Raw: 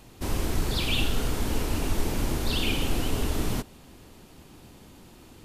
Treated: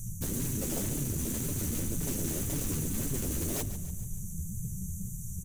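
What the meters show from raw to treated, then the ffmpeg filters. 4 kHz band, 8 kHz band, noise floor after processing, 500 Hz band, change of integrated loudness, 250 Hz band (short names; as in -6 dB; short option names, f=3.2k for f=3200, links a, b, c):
-15.0 dB, +4.5 dB, -40 dBFS, -6.5 dB, -4.5 dB, -3.0 dB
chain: -af "afftfilt=real='re*(1-between(b*sr/4096,210,5800))':imag='im*(1-between(b*sr/4096,210,5800))':win_size=4096:overlap=0.75,bandreject=f=50:t=h:w=6,bandreject=f=100:t=h:w=6,bandreject=f=150:t=h:w=6,bandreject=f=200:t=h:w=6,bandreject=f=250:t=h:w=6,bandreject=f=300:t=h:w=6,bandreject=f=350:t=h:w=6,bandreject=f=400:t=h:w=6,areverse,acompressor=threshold=-32dB:ratio=6,areverse,aeval=exprs='0.0501*sin(PI/2*6.31*val(0)/0.0501)':c=same,flanger=delay=6.8:depth=5.8:regen=-6:speed=1.9:shape=sinusoidal,aecho=1:1:144|288|432|576|720:0.224|0.112|0.056|0.028|0.014"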